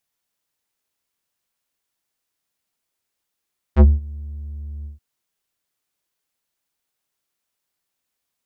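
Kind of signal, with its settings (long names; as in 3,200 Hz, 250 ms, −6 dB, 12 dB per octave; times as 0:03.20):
subtractive voice square D2 12 dB per octave, low-pass 110 Hz, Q 0.71, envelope 5 octaves, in 0.10 s, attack 48 ms, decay 0.19 s, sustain −23 dB, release 0.14 s, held 1.09 s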